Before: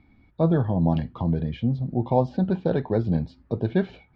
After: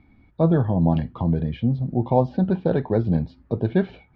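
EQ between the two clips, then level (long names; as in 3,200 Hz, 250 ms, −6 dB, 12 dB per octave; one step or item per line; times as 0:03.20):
high-frequency loss of the air 120 metres
+2.5 dB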